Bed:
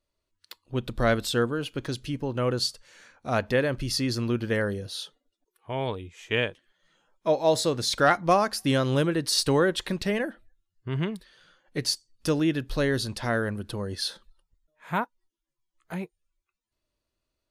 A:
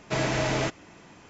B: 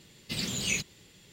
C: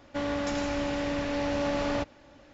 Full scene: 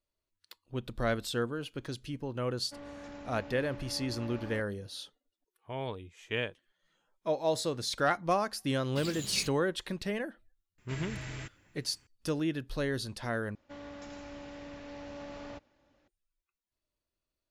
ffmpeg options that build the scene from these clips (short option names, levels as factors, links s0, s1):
-filter_complex "[3:a]asplit=2[s0][s1];[0:a]volume=0.422[s2];[s0]highshelf=f=3500:g=-9[s3];[2:a]aeval=exprs='sgn(val(0))*max(abs(val(0))-0.00631,0)':c=same[s4];[1:a]firequalizer=gain_entry='entry(110,0);entry(180,-10);entry(260,-10);entry(650,-18);entry(1700,-5);entry(4200,-9);entry(6300,-10);entry(10000,15)':delay=0.05:min_phase=1[s5];[s2]asplit=2[s6][s7];[s6]atrim=end=13.554[s8];[s1]atrim=end=2.53,asetpts=PTS-STARTPTS,volume=0.168[s9];[s7]atrim=start=16.076[s10];[s3]atrim=end=2.53,asetpts=PTS-STARTPTS,volume=0.168,afade=t=in:d=0.004:c=hsin,afade=t=out:st=2.526:d=0.004:c=hsin,adelay=2570[s11];[s4]atrim=end=1.32,asetpts=PTS-STARTPTS,volume=0.501,afade=t=in:d=0.004:c=hsin,afade=t=out:st=1.316:d=0.004:c=hsin,adelay=381906S[s12];[s5]atrim=end=1.29,asetpts=PTS-STARTPTS,volume=0.422,afade=t=in:d=0.004:c=hsin,afade=t=out:st=1.286:d=0.004:c=hsin,adelay=10780[s13];[s8][s9]acrossfade=d=0.004:c1=hsin:c2=hsin[s14];[s14][s10]acrossfade=d=0.004:c1=hsin:c2=hsin[s15];[s15][s11][s12][s13]amix=inputs=4:normalize=0"